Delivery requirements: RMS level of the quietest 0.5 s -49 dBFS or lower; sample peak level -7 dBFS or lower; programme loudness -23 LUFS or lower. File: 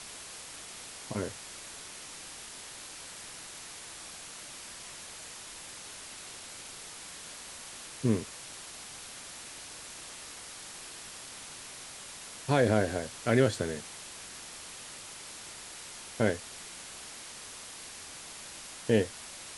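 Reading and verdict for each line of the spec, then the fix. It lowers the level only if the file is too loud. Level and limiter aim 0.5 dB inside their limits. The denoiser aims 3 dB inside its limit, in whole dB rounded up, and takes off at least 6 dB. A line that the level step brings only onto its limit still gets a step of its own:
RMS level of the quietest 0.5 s -46 dBFS: fail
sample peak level -10.5 dBFS: OK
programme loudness -36.5 LUFS: OK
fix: denoiser 6 dB, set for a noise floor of -46 dBFS

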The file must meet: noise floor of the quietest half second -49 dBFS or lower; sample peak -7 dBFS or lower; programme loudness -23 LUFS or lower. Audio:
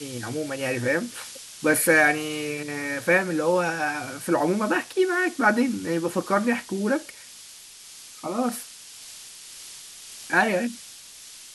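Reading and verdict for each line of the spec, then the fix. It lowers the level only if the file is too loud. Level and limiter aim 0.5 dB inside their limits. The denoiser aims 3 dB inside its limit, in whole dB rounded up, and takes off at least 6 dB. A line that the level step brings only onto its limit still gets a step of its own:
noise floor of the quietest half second -45 dBFS: fail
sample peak -6.0 dBFS: fail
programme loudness -24.0 LUFS: OK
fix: denoiser 7 dB, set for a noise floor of -45 dBFS; limiter -7.5 dBFS

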